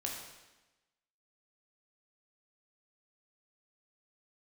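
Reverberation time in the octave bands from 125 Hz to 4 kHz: 1.1, 1.2, 1.1, 1.1, 1.1, 1.0 seconds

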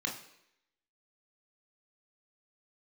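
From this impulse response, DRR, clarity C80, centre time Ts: 0.5 dB, 12.0 dB, 23 ms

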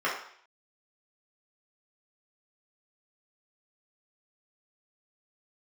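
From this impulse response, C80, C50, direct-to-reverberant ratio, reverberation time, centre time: 8.5 dB, 4.5 dB, −7.0 dB, 0.60 s, 36 ms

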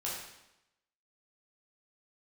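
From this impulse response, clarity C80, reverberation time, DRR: 4.0 dB, 0.90 s, −6.5 dB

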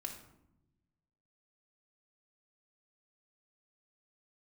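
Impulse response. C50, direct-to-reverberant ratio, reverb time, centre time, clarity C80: 7.0 dB, 1.0 dB, 0.90 s, 21 ms, 10.5 dB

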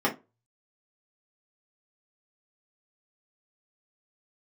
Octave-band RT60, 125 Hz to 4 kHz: 0.55, 0.25, 0.25, 0.25, 0.20, 0.15 seconds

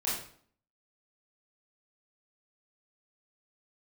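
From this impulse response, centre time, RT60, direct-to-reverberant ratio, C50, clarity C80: 49 ms, 0.55 s, −8.5 dB, 2.5 dB, 7.0 dB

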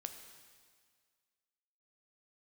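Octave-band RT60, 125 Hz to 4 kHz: 1.7, 1.8, 1.8, 1.9, 1.8, 1.8 seconds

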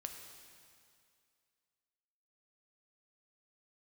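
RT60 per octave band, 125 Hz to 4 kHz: 2.1, 2.2, 2.3, 2.3, 2.2, 2.2 seconds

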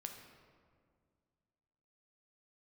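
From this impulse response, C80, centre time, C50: 7.0 dB, 40 ms, 5.5 dB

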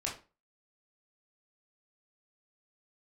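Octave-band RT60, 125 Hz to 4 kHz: 0.35, 0.35, 0.35, 0.30, 0.30, 0.25 seconds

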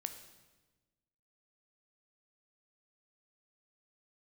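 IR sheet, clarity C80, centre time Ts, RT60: 11.5 dB, 15 ms, 1.2 s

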